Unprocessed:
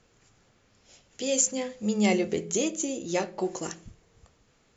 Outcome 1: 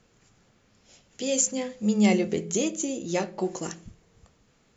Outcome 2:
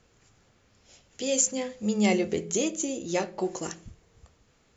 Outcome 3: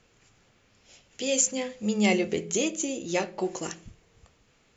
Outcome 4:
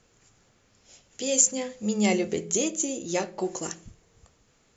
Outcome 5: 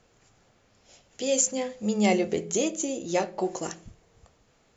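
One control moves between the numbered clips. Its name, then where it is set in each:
parametric band, centre frequency: 190, 69, 2,600, 7,400, 690 Hertz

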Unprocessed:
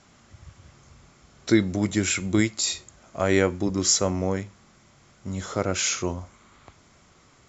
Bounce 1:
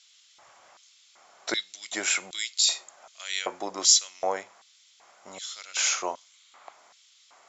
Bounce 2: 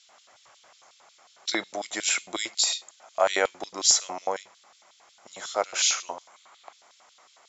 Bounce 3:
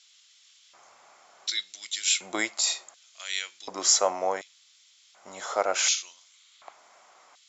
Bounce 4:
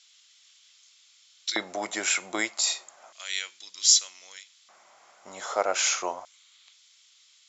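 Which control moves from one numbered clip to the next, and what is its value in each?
auto-filter high-pass, speed: 1.3, 5.5, 0.68, 0.32 Hertz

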